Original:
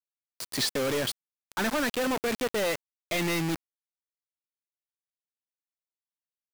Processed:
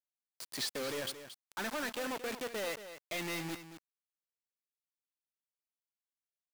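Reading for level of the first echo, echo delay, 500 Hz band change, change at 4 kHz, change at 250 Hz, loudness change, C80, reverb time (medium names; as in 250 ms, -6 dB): -11.5 dB, 226 ms, -10.0 dB, -8.0 dB, -12.0 dB, -9.5 dB, no reverb, no reverb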